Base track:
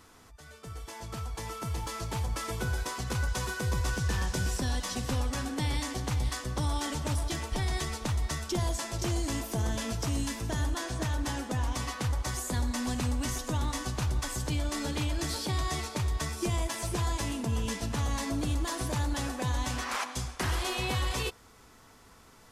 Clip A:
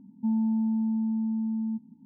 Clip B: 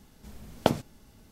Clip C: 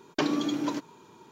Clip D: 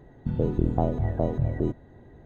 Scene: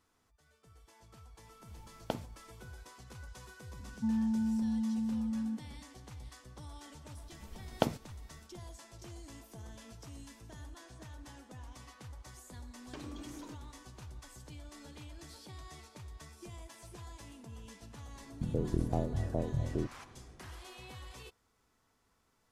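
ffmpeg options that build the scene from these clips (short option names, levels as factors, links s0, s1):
-filter_complex "[2:a]asplit=2[s0][s1];[0:a]volume=0.119[s2];[3:a]acompressor=threshold=0.0251:ratio=4:attack=26:release=32:knee=1:detection=rms[s3];[4:a]equalizer=f=850:w=1.5:g=-2.5[s4];[s0]atrim=end=1.31,asetpts=PTS-STARTPTS,volume=0.211,afade=t=in:d=0.004:c=hsin,afade=t=out:st=1.306:d=0.004:c=hsin,adelay=1440[s5];[1:a]atrim=end=2.04,asetpts=PTS-STARTPTS,volume=0.531,afade=t=in:d=0.004:c=hsin,afade=t=out:st=2.036:d=0.004:c=hsin,adelay=3790[s6];[s1]atrim=end=1.31,asetpts=PTS-STARTPTS,volume=0.473,afade=t=in:d=0.004:c=hsin,afade=t=out:st=1.306:d=0.004:c=hsin,adelay=7160[s7];[s3]atrim=end=1.31,asetpts=PTS-STARTPTS,volume=0.168,afade=t=in:d=0.004:c=hsin,afade=t=out:st=1.306:d=0.004:c=hsin,adelay=12750[s8];[s4]atrim=end=2.25,asetpts=PTS-STARTPTS,volume=0.398,afade=t=in:d=0.004:c=hsin,afade=t=out:st=2.246:d=0.004:c=hsin,adelay=18150[s9];[s2][s5][s6][s7][s8][s9]amix=inputs=6:normalize=0"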